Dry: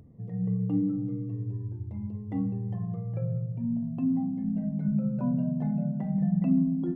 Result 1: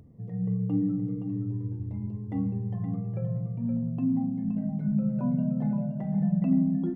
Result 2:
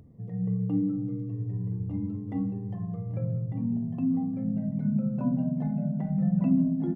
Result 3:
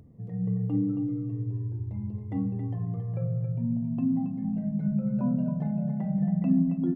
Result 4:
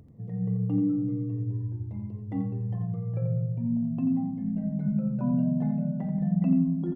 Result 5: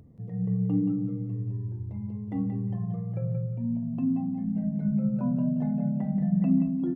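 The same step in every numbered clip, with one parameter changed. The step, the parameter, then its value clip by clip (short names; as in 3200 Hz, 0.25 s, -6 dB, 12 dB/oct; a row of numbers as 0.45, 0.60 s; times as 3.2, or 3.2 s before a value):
feedback echo, time: 520, 1199, 273, 85, 178 ms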